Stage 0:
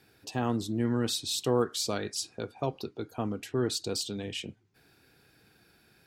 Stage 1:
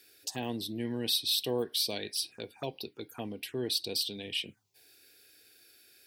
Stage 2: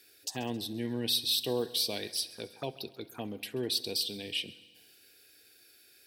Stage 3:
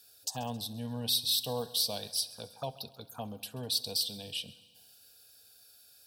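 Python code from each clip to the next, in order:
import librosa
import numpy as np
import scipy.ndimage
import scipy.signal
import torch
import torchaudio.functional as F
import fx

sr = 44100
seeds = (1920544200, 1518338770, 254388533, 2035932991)

y1 = fx.env_phaser(x, sr, low_hz=150.0, high_hz=1300.0, full_db=-33.5)
y1 = fx.tilt_eq(y1, sr, slope=3.0)
y2 = fx.echo_heads(y1, sr, ms=67, heads='first and second', feedback_pct=60, wet_db=-22.0)
y3 = fx.fixed_phaser(y2, sr, hz=850.0, stages=4)
y3 = F.gain(torch.from_numpy(y3), 3.0).numpy()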